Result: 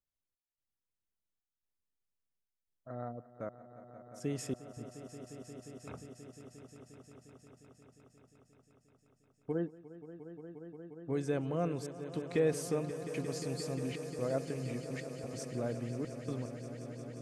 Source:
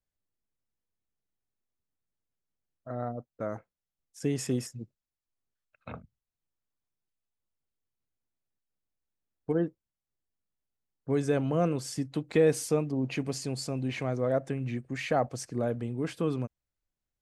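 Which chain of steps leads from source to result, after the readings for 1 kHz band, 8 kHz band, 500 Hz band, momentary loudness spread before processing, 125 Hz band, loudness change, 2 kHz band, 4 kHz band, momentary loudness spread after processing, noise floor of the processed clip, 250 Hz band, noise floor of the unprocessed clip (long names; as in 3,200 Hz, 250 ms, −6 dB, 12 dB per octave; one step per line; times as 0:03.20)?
−9.0 dB, −6.5 dB, −6.5 dB, 16 LU, −6.5 dB, −8.0 dB, −8.0 dB, −7.5 dB, 19 LU, below −85 dBFS, −7.0 dB, below −85 dBFS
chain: gate pattern "xxx..xxxx" 129 BPM −60 dB
echo that builds up and dies away 177 ms, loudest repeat 5, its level −14.5 dB
level −7 dB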